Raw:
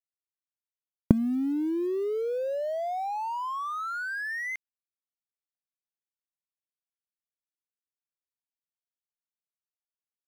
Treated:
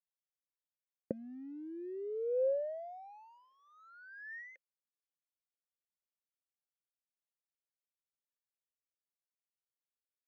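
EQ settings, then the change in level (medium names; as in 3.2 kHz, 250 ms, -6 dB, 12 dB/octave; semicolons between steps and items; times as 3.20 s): vowel filter e; brick-wall FIR low-pass 6.8 kHz; peaking EQ 2.8 kHz -14 dB 1.4 oct; +1.0 dB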